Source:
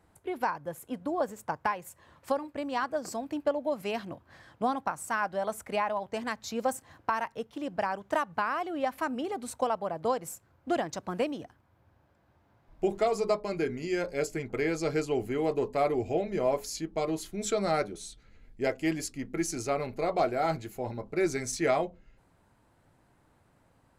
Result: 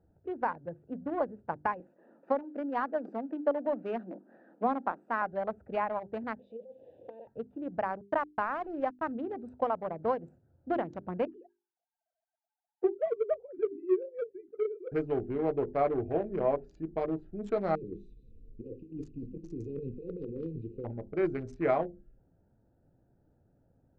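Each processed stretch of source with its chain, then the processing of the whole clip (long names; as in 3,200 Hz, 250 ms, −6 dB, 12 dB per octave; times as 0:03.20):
0:01.80–0:05.22: mu-law and A-law mismatch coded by mu + Butterworth high-pass 200 Hz 48 dB per octave + high-shelf EQ 7,800 Hz −8 dB
0:06.39–0:07.27: converter with a step at zero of −36 dBFS + pair of resonant band-passes 1,300 Hz, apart 2.7 octaves + compressor whose output falls as the input rises −39 dBFS
0:08.01–0:09.12: low-pass filter 6,700 Hz + centre clipping without the shift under −38 dBFS
0:11.25–0:14.92: three sine waves on the formant tracks + flanger swept by the level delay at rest 4.5 ms, full sweep at −27.5 dBFS
0:17.75–0:20.85: linear-phase brick-wall band-stop 530–2,400 Hz + compressor whose output falls as the input rises −36 dBFS, ratio −0.5 + echo through a band-pass that steps 177 ms, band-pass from 3,500 Hz, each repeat −0.7 octaves, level −8 dB
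whole clip: adaptive Wiener filter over 41 samples; low-pass filter 1,700 Hz 12 dB per octave; mains-hum notches 50/100/150/200/250/300/350/400 Hz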